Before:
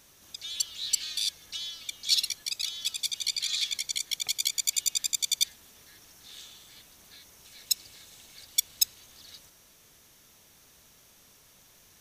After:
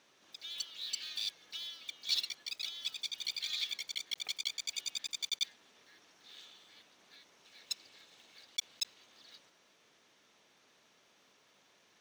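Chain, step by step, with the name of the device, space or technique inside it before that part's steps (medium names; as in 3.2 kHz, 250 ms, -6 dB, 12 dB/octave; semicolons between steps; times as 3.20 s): early digital voice recorder (band-pass 260–3900 Hz; block-companded coder 5-bit); trim -4 dB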